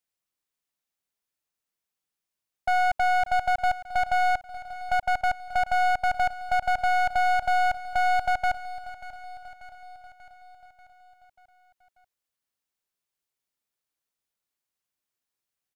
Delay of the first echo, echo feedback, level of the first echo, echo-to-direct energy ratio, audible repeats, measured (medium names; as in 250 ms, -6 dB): 588 ms, 58%, -15.5 dB, -13.5 dB, 5